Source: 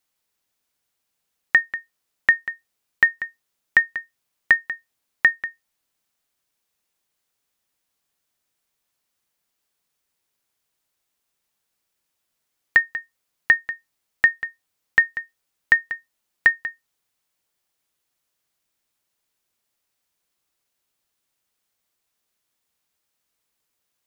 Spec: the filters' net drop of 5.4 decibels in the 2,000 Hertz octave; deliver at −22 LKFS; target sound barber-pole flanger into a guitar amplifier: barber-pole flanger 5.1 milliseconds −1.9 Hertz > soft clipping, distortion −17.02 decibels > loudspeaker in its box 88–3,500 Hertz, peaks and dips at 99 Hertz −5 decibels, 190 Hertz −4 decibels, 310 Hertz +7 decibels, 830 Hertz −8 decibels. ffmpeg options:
ffmpeg -i in.wav -filter_complex "[0:a]equalizer=frequency=2000:width_type=o:gain=-5.5,asplit=2[link_01][link_02];[link_02]adelay=5.1,afreqshift=-1.9[link_03];[link_01][link_03]amix=inputs=2:normalize=1,asoftclip=threshold=-14.5dB,highpass=88,equalizer=frequency=99:width_type=q:width=4:gain=-5,equalizer=frequency=190:width_type=q:width=4:gain=-4,equalizer=frequency=310:width_type=q:width=4:gain=7,equalizer=frequency=830:width_type=q:width=4:gain=-8,lowpass=frequency=3500:width=0.5412,lowpass=frequency=3500:width=1.3066,volume=9dB" out.wav

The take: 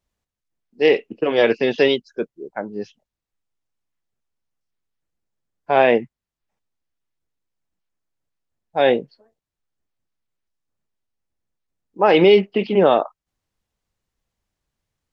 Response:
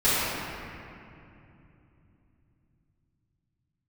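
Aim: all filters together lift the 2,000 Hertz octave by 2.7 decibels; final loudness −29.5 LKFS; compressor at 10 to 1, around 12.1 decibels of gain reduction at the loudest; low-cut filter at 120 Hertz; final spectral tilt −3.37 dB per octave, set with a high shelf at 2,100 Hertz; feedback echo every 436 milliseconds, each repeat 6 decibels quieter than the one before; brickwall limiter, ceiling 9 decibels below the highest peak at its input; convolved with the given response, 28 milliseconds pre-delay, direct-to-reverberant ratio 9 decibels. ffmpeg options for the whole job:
-filter_complex "[0:a]highpass=120,equalizer=frequency=2000:width_type=o:gain=5,highshelf=frequency=2100:gain=-3,acompressor=threshold=-21dB:ratio=10,alimiter=limit=-19.5dB:level=0:latency=1,aecho=1:1:436|872|1308|1744|2180|2616:0.501|0.251|0.125|0.0626|0.0313|0.0157,asplit=2[link_01][link_02];[1:a]atrim=start_sample=2205,adelay=28[link_03];[link_02][link_03]afir=irnorm=-1:irlink=0,volume=-27dB[link_04];[link_01][link_04]amix=inputs=2:normalize=0,volume=2dB"

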